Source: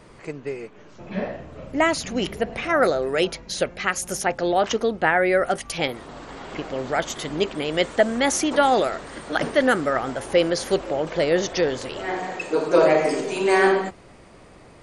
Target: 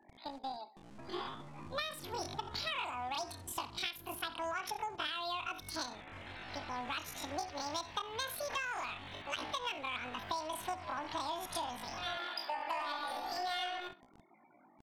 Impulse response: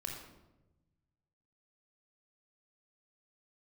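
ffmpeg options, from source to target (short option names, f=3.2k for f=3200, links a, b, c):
-filter_complex "[0:a]equalizer=f=250:t=o:w=0.67:g=-11,equalizer=f=630:t=o:w=0.67:g=-6,equalizer=f=4k:t=o:w=0.67:g=-11,afftfilt=real='re*gte(hypot(re,im),0.00794)':imag='im*gte(hypot(re,im),0.00794)':win_size=1024:overlap=0.75,aecho=1:1:61|122:0.178|0.0302,acrossover=split=120|4700[a][b][c];[a]acrusher=bits=7:mix=0:aa=0.000001[d];[d][b][c]amix=inputs=3:normalize=0,asetrate=83250,aresample=44100,atempo=0.529732,acompressor=threshold=-28dB:ratio=10,equalizer=f=9.1k:w=0.82:g=7,adynamicsmooth=sensitivity=5.5:basefreq=7.2k,volume=-7dB"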